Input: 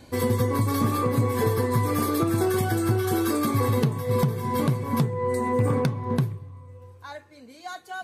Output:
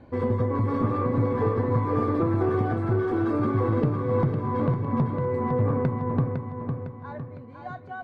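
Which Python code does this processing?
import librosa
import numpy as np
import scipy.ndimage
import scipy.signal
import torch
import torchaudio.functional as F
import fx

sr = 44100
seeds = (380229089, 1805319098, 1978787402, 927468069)

y = fx.diode_clip(x, sr, knee_db=-16.0)
y = scipy.signal.sosfilt(scipy.signal.butter(2, 1400.0, 'lowpass', fs=sr, output='sos'), y)
y = fx.echo_feedback(y, sr, ms=506, feedback_pct=47, wet_db=-6.0)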